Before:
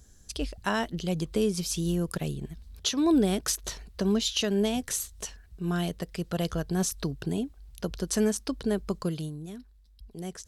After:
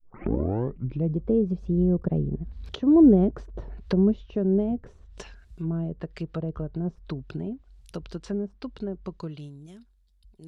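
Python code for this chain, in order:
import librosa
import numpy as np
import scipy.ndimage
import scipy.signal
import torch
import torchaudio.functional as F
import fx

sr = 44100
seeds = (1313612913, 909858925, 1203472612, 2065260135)

y = fx.tape_start_head(x, sr, length_s=1.27)
y = fx.doppler_pass(y, sr, speed_mps=20, closest_m=28.0, pass_at_s=2.77)
y = fx.env_lowpass_down(y, sr, base_hz=530.0, full_db=-33.5)
y = y * librosa.db_to_amplitude(8.0)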